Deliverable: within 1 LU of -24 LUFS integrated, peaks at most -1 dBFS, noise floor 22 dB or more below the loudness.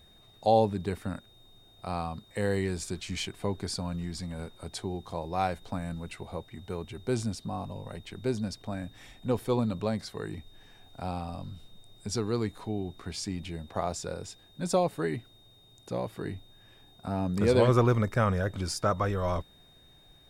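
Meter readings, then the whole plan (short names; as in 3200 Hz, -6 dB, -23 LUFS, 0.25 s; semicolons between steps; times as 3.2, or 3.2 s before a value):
steady tone 3700 Hz; tone level -58 dBFS; loudness -31.5 LUFS; peak -11.0 dBFS; loudness target -24.0 LUFS
-> notch 3700 Hz, Q 30; gain +7.5 dB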